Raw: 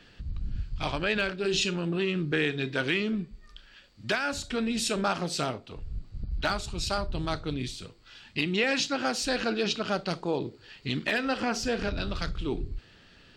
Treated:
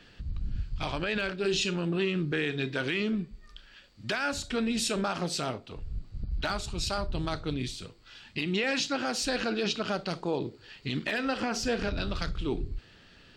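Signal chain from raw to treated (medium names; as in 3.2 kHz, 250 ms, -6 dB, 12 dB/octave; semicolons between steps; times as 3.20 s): peak limiter -19 dBFS, peak gain reduction 5.5 dB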